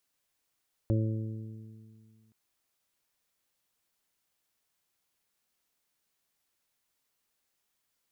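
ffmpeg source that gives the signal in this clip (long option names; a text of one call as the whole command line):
ffmpeg -f lavfi -i "aevalsrc='0.0668*pow(10,-3*t/2.02)*sin(2*PI*110*t)+0.0237*pow(10,-3*t/2.49)*sin(2*PI*220*t)+0.0299*pow(10,-3*t/1.65)*sin(2*PI*330*t)+0.00944*pow(10,-3*t/1.91)*sin(2*PI*440*t)+0.0168*pow(10,-3*t/1.03)*sin(2*PI*550*t)':duration=1.42:sample_rate=44100" out.wav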